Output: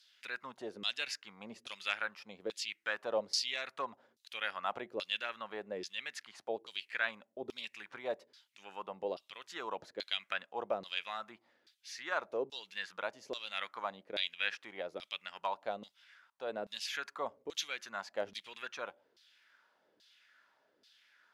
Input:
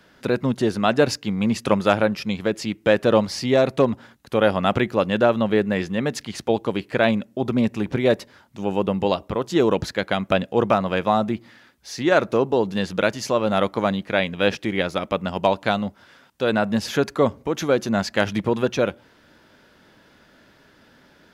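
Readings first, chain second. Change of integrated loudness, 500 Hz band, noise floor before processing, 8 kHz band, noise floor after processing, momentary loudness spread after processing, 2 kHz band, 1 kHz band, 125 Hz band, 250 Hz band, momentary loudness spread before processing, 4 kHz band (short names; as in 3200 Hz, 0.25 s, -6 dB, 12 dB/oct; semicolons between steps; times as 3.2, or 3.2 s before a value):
-17.5 dB, -21.0 dB, -55 dBFS, -11.5 dB, -76 dBFS, 9 LU, -12.0 dB, -17.0 dB, -36.5 dB, -30.5 dB, 6 LU, -8.5 dB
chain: pre-emphasis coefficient 0.9; LFO band-pass saw down 1.2 Hz 380–4600 Hz; gain +5.5 dB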